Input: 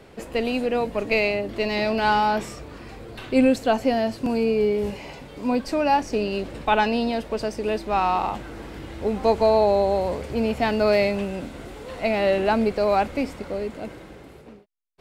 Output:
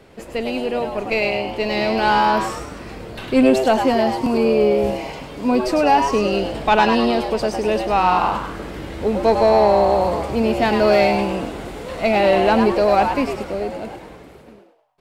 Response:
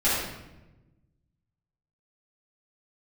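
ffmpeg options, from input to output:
-filter_complex "[0:a]dynaudnorm=framelen=270:gausssize=13:maxgain=7dB,asoftclip=type=tanh:threshold=-5.5dB,asplit=2[link_01][link_02];[link_02]asplit=5[link_03][link_04][link_05][link_06][link_07];[link_03]adelay=102,afreqshift=130,volume=-6.5dB[link_08];[link_04]adelay=204,afreqshift=260,volume=-14.7dB[link_09];[link_05]adelay=306,afreqshift=390,volume=-22.9dB[link_10];[link_06]adelay=408,afreqshift=520,volume=-31dB[link_11];[link_07]adelay=510,afreqshift=650,volume=-39.2dB[link_12];[link_08][link_09][link_10][link_11][link_12]amix=inputs=5:normalize=0[link_13];[link_01][link_13]amix=inputs=2:normalize=0"

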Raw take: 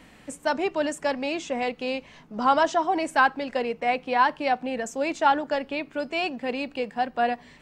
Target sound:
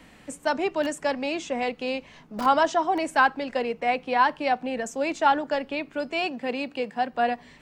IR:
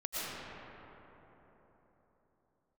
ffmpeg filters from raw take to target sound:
-filter_complex "[0:a]asettb=1/sr,asplit=3[link_01][link_02][link_03];[link_01]atrim=end=6.224[link_04];[link_02]atrim=start=6.22:end=7.12,asetpts=PTS-STARTPTS,afade=type=in:duration=0.004:curve=qsin,afade=type=out:start_time=0.896:duration=0.004:curve=qsin,highpass=94[link_05];[link_03]atrim=start=7.116[link_06];[link_04][link_05]acrossfade=duration=0.004:curve1=hsin:curve2=qsin[link_07];[link_07][link_06]acrossfade=duration=0.004:curve1=qsin:curve2=hsin,acrossover=split=250|1800[link_08][link_09][link_10];[link_08]aeval=exprs='(mod(39.8*val(0)+1,2)-1)/39.8':channel_layout=same[link_11];[link_11][link_09][link_10]amix=inputs=3:normalize=0"

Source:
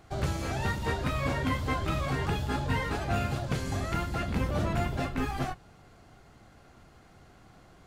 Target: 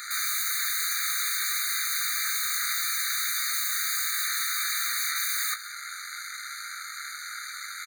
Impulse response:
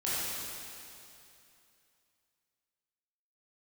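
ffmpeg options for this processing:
-filter_complex "[0:a]highpass=40,highshelf=frequency=3400:gain=10,bandreject=frequency=60:width_type=h:width=6,bandreject=frequency=120:width_type=h:width=6,alimiter=level_in=1.5dB:limit=-24dB:level=0:latency=1:release=11,volume=-1.5dB,aeval=exprs='0.0562*(cos(1*acos(clip(val(0)/0.0562,-1,1)))-cos(1*PI/2))+0.0251*(cos(8*acos(clip(val(0)/0.0562,-1,1)))-cos(8*PI/2))':channel_layout=same,asplit=2[link_01][link_02];[link_02]acompressor=threshold=-50dB:ratio=6,volume=-2dB[link_03];[link_01][link_03]amix=inputs=2:normalize=0,equalizer=frequency=125:width_type=o:width=0.33:gain=6,equalizer=frequency=630:width_type=o:width=0.33:gain=-9,equalizer=frequency=1000:width_type=o:width=0.33:gain=-7,aeval=exprs='0.0944*sin(PI/2*7.94*val(0)/0.0944)':channel_layout=same,asplit=2[link_04][link_05];[link_05]adelay=21,volume=-8.5dB[link_06];[link_04][link_06]amix=inputs=2:normalize=0,asplit=2[link_07][link_08];[link_08]adelay=174.9,volume=-16dB,highshelf=frequency=4000:gain=-3.94[link_09];[link_07][link_09]amix=inputs=2:normalize=0,afftfilt=real='re*eq(mod(floor(b*sr/1024/1200),2),1)':imag='im*eq(mod(floor(b*sr/1024/1200),2),1)':win_size=1024:overlap=0.75,volume=-2dB"

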